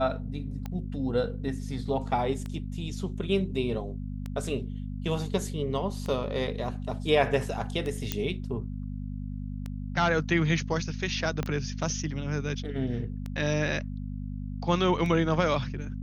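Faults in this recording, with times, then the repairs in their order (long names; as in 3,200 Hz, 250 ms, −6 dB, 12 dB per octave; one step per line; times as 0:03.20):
mains hum 50 Hz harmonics 5 −35 dBFS
scratch tick 33 1/3 rpm −22 dBFS
0:08.12: click −12 dBFS
0:11.43: click −16 dBFS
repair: click removal
hum removal 50 Hz, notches 5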